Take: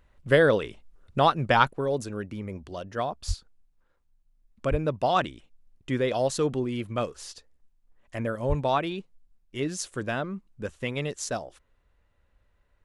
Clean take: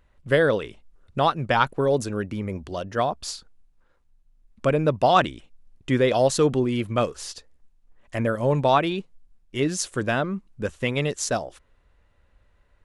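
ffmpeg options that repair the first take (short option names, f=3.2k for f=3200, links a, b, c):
-filter_complex "[0:a]asplit=3[a][b][c];[a]afade=t=out:st=3.27:d=0.02[d];[b]highpass=f=140:w=0.5412,highpass=f=140:w=1.3066,afade=t=in:st=3.27:d=0.02,afade=t=out:st=3.39:d=0.02[e];[c]afade=t=in:st=3.39:d=0.02[f];[d][e][f]amix=inputs=3:normalize=0,asplit=3[g][h][i];[g]afade=t=out:st=4.7:d=0.02[j];[h]highpass=f=140:w=0.5412,highpass=f=140:w=1.3066,afade=t=in:st=4.7:d=0.02,afade=t=out:st=4.82:d=0.02[k];[i]afade=t=in:st=4.82:d=0.02[l];[j][k][l]amix=inputs=3:normalize=0,asplit=3[m][n][o];[m]afade=t=out:st=8.48:d=0.02[p];[n]highpass=f=140:w=0.5412,highpass=f=140:w=1.3066,afade=t=in:st=8.48:d=0.02,afade=t=out:st=8.6:d=0.02[q];[o]afade=t=in:st=8.6:d=0.02[r];[p][q][r]amix=inputs=3:normalize=0,asetnsamples=n=441:p=0,asendcmd='1.69 volume volume 6dB',volume=0dB"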